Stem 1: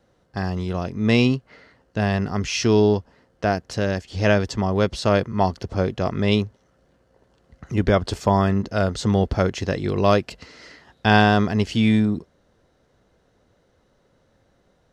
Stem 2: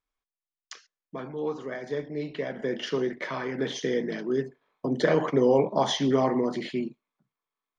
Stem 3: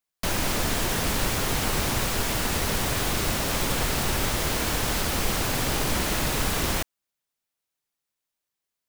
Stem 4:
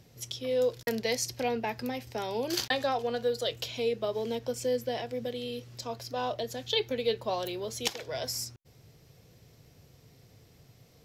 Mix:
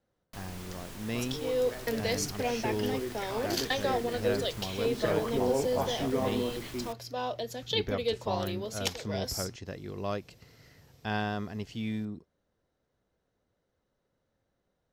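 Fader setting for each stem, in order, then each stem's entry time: −16.5, −8.0, −20.0, −1.5 decibels; 0.00, 0.00, 0.10, 1.00 seconds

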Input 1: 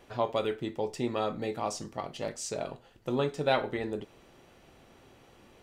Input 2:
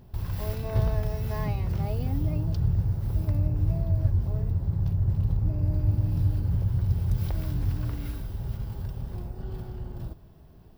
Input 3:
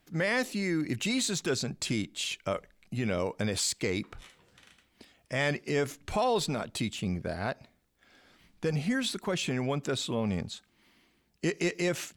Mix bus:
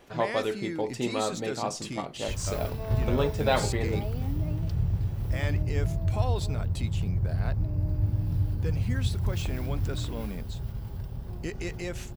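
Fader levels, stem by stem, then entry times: +1.5, −2.5, −6.5 decibels; 0.00, 2.15, 0.00 seconds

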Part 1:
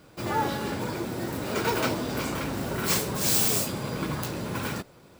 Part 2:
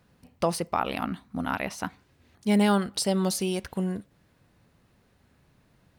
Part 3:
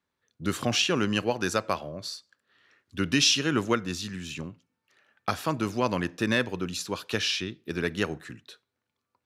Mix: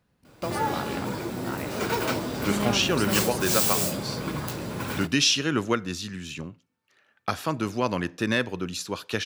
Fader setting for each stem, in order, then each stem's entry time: −0.5, −7.5, +0.5 decibels; 0.25, 0.00, 2.00 seconds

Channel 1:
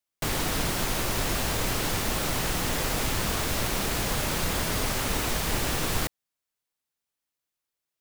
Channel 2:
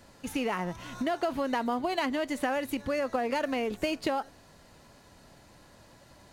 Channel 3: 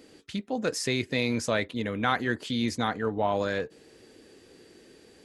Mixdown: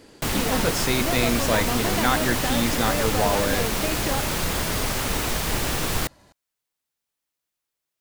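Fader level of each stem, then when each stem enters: +2.5, 0.0, +3.0 decibels; 0.00, 0.00, 0.00 seconds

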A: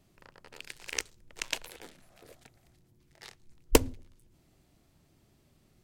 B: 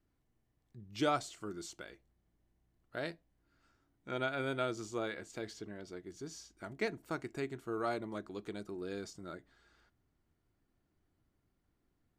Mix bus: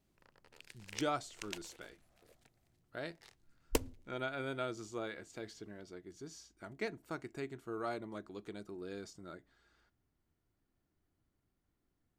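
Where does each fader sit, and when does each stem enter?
−11.5, −3.5 decibels; 0.00, 0.00 seconds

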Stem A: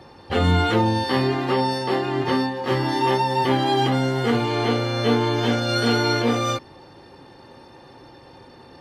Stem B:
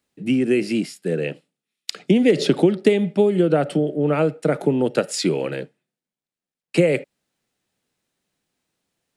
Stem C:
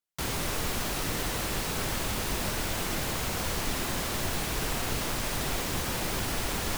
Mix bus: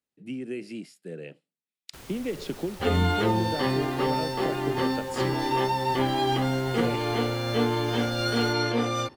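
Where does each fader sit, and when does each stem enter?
−5.0, −15.5, −15.0 decibels; 2.50, 0.00, 1.75 seconds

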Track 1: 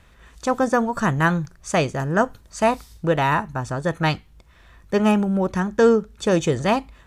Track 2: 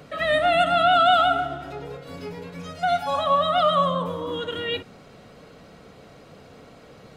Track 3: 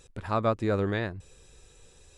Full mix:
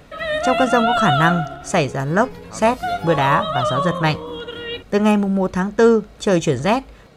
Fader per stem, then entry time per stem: +2.5, −1.0, −10.0 decibels; 0.00, 0.00, 2.20 seconds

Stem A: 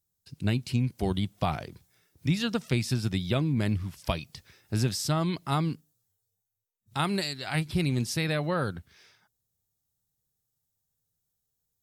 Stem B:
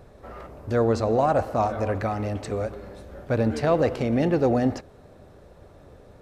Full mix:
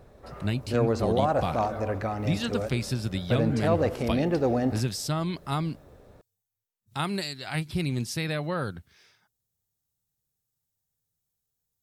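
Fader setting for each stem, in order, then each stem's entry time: −1.5, −3.5 decibels; 0.00, 0.00 seconds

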